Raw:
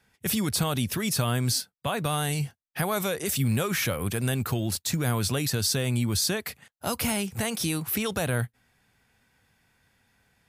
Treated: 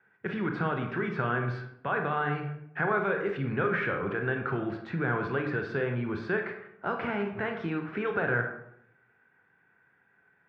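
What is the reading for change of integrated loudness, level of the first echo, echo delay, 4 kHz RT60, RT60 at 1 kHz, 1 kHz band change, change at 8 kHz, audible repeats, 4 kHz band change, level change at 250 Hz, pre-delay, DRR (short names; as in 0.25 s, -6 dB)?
-3.5 dB, none, none, 0.45 s, 0.70 s, +1.5 dB, under -40 dB, none, -19.5 dB, -3.5 dB, 23 ms, 3.5 dB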